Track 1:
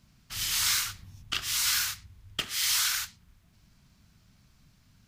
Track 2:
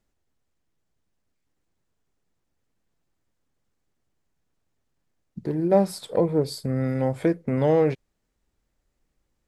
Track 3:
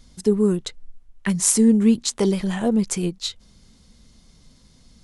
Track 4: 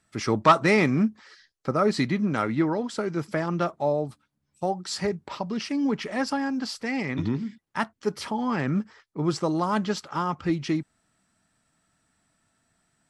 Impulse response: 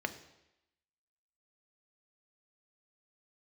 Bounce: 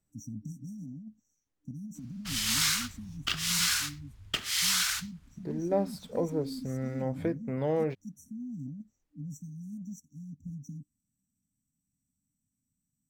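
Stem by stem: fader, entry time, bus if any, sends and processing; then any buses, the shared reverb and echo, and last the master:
+0.5 dB, 1.95 s, no send, dry
-9.0 dB, 0.00 s, no send, de-hum 94.61 Hz, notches 2
off
-11.0 dB, 0.00 s, no send, FFT band-reject 300–5600 Hz; negative-ratio compressor -28 dBFS, ratio -1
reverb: off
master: decimation joined by straight lines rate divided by 2×

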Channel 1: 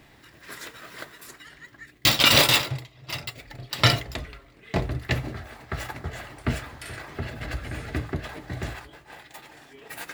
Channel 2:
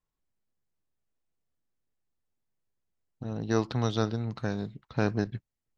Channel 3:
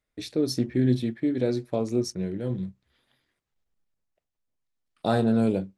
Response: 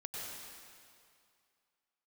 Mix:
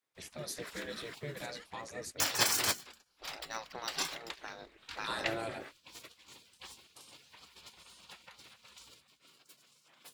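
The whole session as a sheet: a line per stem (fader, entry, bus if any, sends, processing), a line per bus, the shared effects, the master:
-1.5 dB, 0.15 s, no send, weighting filter A; upward expander 1.5:1, over -24 dBFS
-3.5 dB, 0.00 s, no send, median filter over 3 samples
-1.5 dB, 0.00 s, no send, dry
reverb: off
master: spectral gate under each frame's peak -15 dB weak

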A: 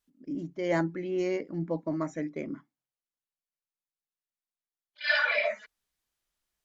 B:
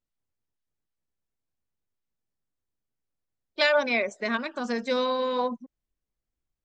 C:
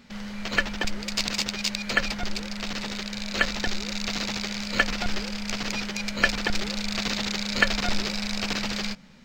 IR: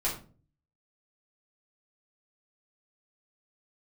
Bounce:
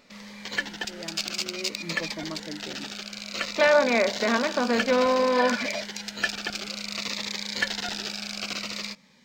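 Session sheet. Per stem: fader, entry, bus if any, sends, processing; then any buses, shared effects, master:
1.41 s -14 dB -> 1.72 s -5 dB, 0.30 s, no send, dry
+3.0 dB, 0.00 s, no send, per-bin compression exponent 0.6; Bessel low-pass 1700 Hz
-1.0 dB, 0.00 s, no send, HPF 450 Hz 6 dB/oct; soft clip -11 dBFS, distortion -18 dB; cascading phaser falling 0.57 Hz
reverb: off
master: dry

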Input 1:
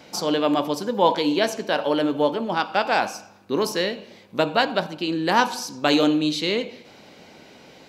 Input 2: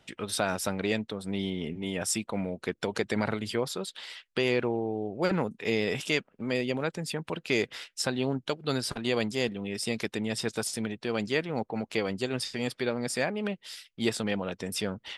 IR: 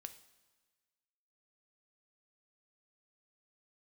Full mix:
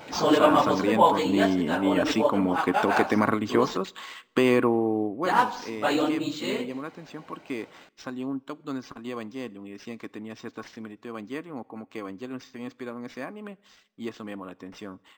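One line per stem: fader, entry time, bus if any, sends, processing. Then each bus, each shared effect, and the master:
+1.0 dB, 0.00 s, muted 3.77–5.25, no send, phase scrambler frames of 50 ms; auto duck -17 dB, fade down 1.65 s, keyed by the second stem
5.02 s -9.5 dB -> 5.35 s -22.5 dB, 0.00 s, send -5 dB, small resonant body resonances 280/1100 Hz, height 14 dB, ringing for 45 ms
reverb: on, pre-delay 3 ms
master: bell 1100 Hz +7 dB 1.8 oct; AGC gain up to 7.5 dB; decimation joined by straight lines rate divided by 4×

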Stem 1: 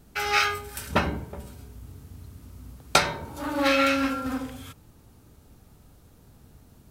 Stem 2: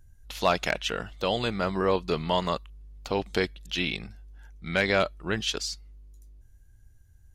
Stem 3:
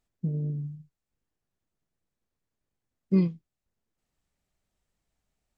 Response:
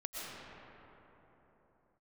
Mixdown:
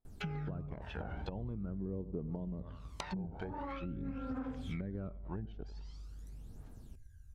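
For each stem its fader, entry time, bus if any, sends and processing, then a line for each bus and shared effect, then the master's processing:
-8.5 dB, 0.05 s, no send, no echo send, notches 60/120/180/240/300 Hz; compressor 20:1, threshold -28 dBFS, peak gain reduction 15.5 dB
-5.5 dB, 0.05 s, no send, echo send -19.5 dB, auto duck -7 dB, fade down 1.05 s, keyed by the third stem
-12.0 dB, 0.00 s, no send, no echo send, low-pass opened by the level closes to 960 Hz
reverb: off
echo: feedback echo 94 ms, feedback 44%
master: treble ducked by the level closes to 320 Hz, closed at -31 dBFS; phaser 0.45 Hz, delay 1.4 ms, feedback 58%; compressor 6:1, threshold -36 dBFS, peak gain reduction 10.5 dB

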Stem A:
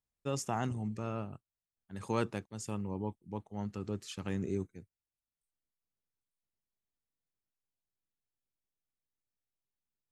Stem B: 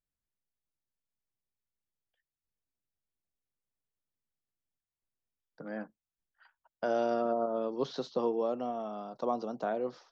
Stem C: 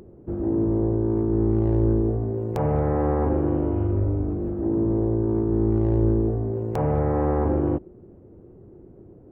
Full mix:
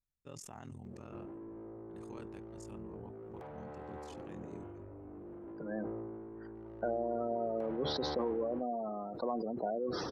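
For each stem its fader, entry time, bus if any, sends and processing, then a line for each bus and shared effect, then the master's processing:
-10.5 dB, 0.00 s, no send, limiter -25.5 dBFS, peak gain reduction 7.5 dB; ring modulator 21 Hz
0.0 dB, 0.00 s, no send, spectral gate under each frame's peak -15 dB strong; compressor, threshold -32 dBFS, peak gain reduction 6.5 dB
-18.0 dB, 0.85 s, no send, high shelf 2000 Hz +12 dB; compressor 8:1, threshold -31 dBFS, peak gain reduction 14.5 dB; overdrive pedal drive 21 dB, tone 1200 Hz, clips at -21.5 dBFS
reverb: off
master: sustainer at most 23 dB/s

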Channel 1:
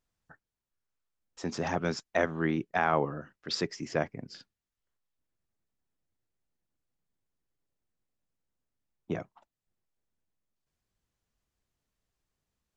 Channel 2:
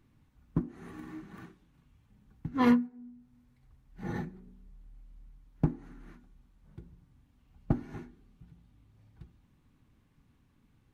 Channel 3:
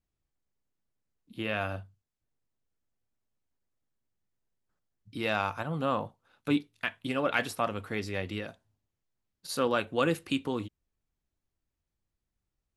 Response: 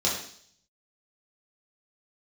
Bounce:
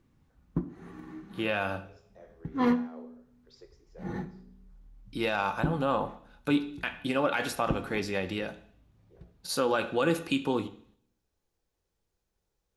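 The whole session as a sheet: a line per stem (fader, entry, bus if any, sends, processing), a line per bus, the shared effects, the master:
-19.5 dB, 0.00 s, send -14.5 dB, upward compressor, threshold -39 dBFS; ladder high-pass 380 Hz, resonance 60%; auto duck -14 dB, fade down 1.45 s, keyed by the third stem
-1.0 dB, 0.00 s, send -21.5 dB, high shelf 5700 Hz -7.5 dB
+2.0 dB, 0.00 s, send -20.5 dB, small resonant body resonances 850/1500/2500 Hz, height 7 dB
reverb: on, RT60 0.60 s, pre-delay 3 ms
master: limiter -16 dBFS, peak gain reduction 7.5 dB

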